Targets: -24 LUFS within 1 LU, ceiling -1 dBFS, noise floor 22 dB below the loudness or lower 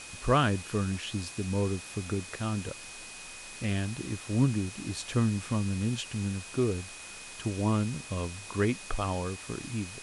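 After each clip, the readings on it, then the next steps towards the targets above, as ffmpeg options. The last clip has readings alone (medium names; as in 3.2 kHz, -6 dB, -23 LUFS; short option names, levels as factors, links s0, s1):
steady tone 2.5 kHz; tone level -48 dBFS; noise floor -45 dBFS; noise floor target -54 dBFS; loudness -31.5 LUFS; peak level -13.0 dBFS; loudness target -24.0 LUFS
-> -af "bandreject=f=2500:w=30"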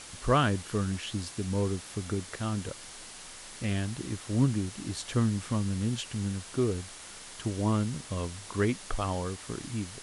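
steady tone not found; noise floor -46 dBFS; noise floor target -54 dBFS
-> -af "afftdn=nr=8:nf=-46"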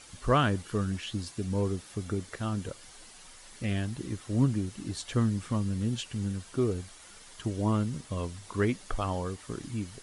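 noise floor -51 dBFS; noise floor target -54 dBFS
-> -af "afftdn=nr=6:nf=-51"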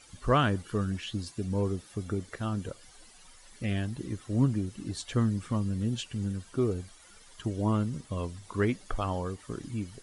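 noise floor -55 dBFS; loudness -32.0 LUFS; peak level -13.0 dBFS; loudness target -24.0 LUFS
-> -af "volume=2.51"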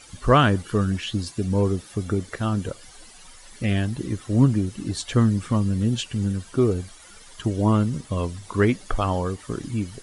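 loudness -24.0 LUFS; peak level -5.0 dBFS; noise floor -47 dBFS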